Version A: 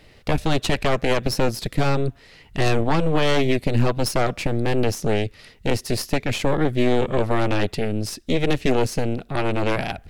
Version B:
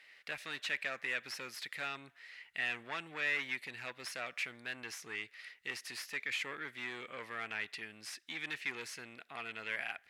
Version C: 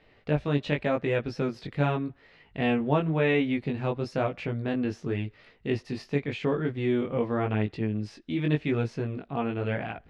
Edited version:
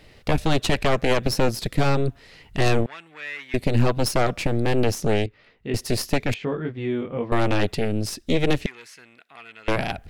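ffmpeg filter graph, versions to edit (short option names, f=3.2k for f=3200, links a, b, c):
-filter_complex "[1:a]asplit=2[a][b];[2:a]asplit=2[c][d];[0:a]asplit=5[e][f][g][h][i];[e]atrim=end=2.862[j];[a]atrim=start=2.858:end=3.542[k];[f]atrim=start=3.538:end=5.262[l];[c]atrim=start=5.258:end=5.742[m];[g]atrim=start=5.738:end=6.342[n];[d]atrim=start=6.338:end=7.322[o];[h]atrim=start=7.318:end=8.662[p];[b]atrim=start=8.658:end=9.682[q];[i]atrim=start=9.678[r];[j][k]acrossfade=d=0.004:c1=hsin:c2=hsin[s];[s][l]acrossfade=d=0.004:c1=hsin:c2=hsin[t];[t][m]acrossfade=d=0.004:c1=hsin:c2=hsin[u];[u][n]acrossfade=d=0.004:c1=hsin:c2=hsin[v];[v][o]acrossfade=d=0.004:c1=hsin:c2=hsin[w];[w][p]acrossfade=d=0.004:c1=hsin:c2=hsin[x];[x][q]acrossfade=d=0.004:c1=hsin:c2=hsin[y];[y][r]acrossfade=d=0.004:c1=hsin:c2=hsin"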